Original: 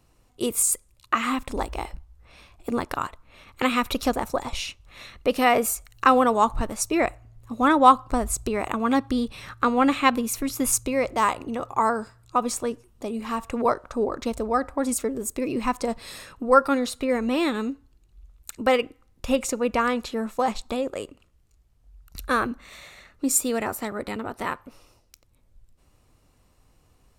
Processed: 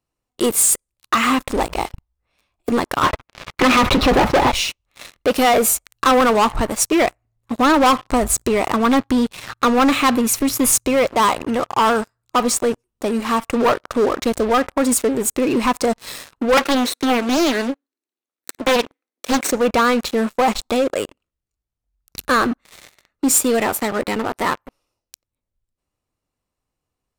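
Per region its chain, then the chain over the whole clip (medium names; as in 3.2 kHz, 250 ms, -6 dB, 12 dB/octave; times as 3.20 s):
3.02–4.52 s: waveshaping leveller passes 5 + distance through air 360 m + comb of notches 230 Hz
16.57–19.51 s: comb filter that takes the minimum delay 0.51 ms + steep high-pass 250 Hz + loudspeaker Doppler distortion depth 0.79 ms
whole clip: bass shelf 120 Hz -7.5 dB; waveshaping leveller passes 5; trim -7 dB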